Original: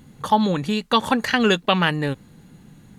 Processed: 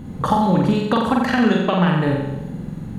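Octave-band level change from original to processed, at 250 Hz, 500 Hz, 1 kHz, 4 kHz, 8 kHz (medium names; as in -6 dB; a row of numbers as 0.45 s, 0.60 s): +5.0 dB, +2.0 dB, +1.0 dB, -6.5 dB, no reading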